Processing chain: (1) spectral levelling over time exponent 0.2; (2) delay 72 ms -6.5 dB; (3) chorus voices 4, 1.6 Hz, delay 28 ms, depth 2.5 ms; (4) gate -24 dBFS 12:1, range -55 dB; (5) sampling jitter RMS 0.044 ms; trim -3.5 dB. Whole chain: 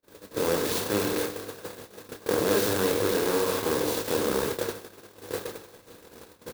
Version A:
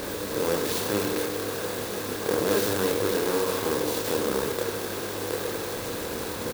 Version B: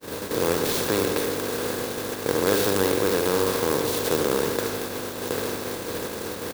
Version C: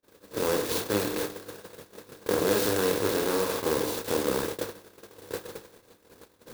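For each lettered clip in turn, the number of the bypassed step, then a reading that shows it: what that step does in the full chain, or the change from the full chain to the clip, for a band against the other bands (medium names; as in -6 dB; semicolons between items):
4, momentary loudness spread change -10 LU; 3, momentary loudness spread change -9 LU; 2, momentary loudness spread change +3 LU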